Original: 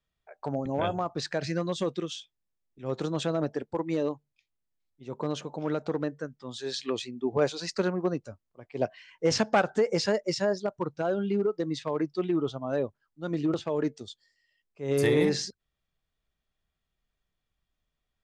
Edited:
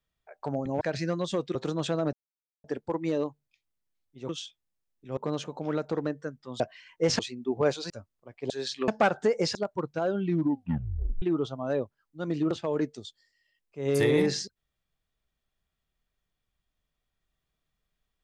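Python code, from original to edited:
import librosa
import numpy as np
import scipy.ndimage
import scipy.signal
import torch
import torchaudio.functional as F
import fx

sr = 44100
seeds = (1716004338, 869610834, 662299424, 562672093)

y = fx.edit(x, sr, fx.cut(start_s=0.81, length_s=0.48),
    fx.move(start_s=2.03, length_s=0.88, to_s=5.14),
    fx.insert_silence(at_s=3.49, length_s=0.51),
    fx.swap(start_s=6.57, length_s=0.38, other_s=8.82, other_length_s=0.59),
    fx.cut(start_s=7.66, length_s=0.56),
    fx.cut(start_s=10.08, length_s=0.5),
    fx.tape_stop(start_s=11.21, length_s=1.04), tone=tone)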